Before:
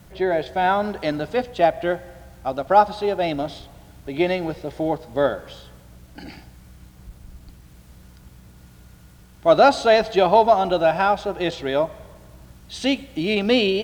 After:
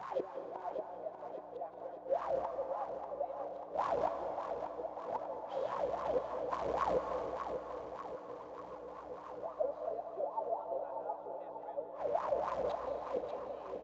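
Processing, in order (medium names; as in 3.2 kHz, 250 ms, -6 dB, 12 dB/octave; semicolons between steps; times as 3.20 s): one-bit delta coder 64 kbps, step -31.5 dBFS; recorder AGC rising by 5.8 dB/s; dynamic bell 510 Hz, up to +3 dB, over -24 dBFS, Q 1; in parallel at -2 dB: compression 6:1, threshold -28 dBFS, peak gain reduction 20 dB; on the sum: waveshaping leveller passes 1; inverted gate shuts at -16 dBFS, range -29 dB; mains buzz 60 Hz, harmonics 8, -42 dBFS -4 dB/octave; wah-wah 3.7 Hz 490–1100 Hz, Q 15; feedback delay 590 ms, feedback 59%, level -7.5 dB; on a send at -6.5 dB: reverberation RT60 2.0 s, pre-delay 153 ms; on the sum: resampled via 16 kHz; trim +9 dB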